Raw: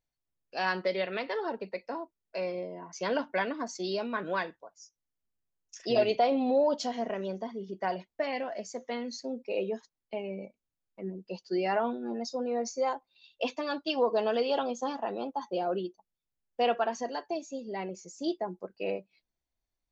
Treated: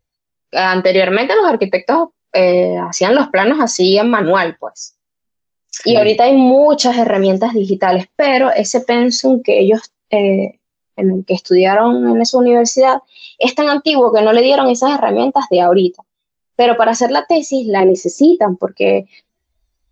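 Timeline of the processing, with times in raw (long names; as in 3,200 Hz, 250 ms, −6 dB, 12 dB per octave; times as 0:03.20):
0:17.80–0:18.41: drawn EQ curve 180 Hz 0 dB, 320 Hz +14 dB, 1,400 Hz −3 dB
whole clip: noise reduction from a noise print of the clip's start 14 dB; speech leveller within 3 dB 2 s; boost into a limiter +23.5 dB; level −1 dB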